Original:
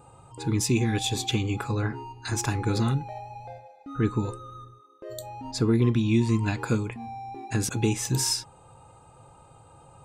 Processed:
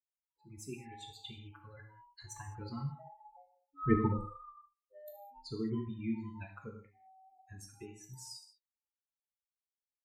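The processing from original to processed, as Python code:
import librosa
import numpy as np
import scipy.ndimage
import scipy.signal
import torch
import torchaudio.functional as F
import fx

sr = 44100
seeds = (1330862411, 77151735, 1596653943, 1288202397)

y = fx.bin_expand(x, sr, power=3.0)
y = fx.doppler_pass(y, sr, speed_mps=11, closest_m=2.6, pass_at_s=4.13)
y = fx.rev_gated(y, sr, seeds[0], gate_ms=230, shape='falling', drr_db=2.0)
y = y * librosa.db_to_amplitude(5.5)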